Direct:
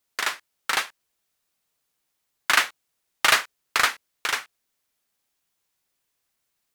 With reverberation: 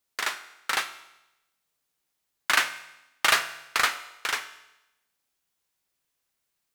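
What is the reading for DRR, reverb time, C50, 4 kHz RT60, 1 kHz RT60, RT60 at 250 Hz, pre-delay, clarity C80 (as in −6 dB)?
10.0 dB, 0.90 s, 13.0 dB, 0.90 s, 0.90 s, 0.95 s, 5 ms, 15.0 dB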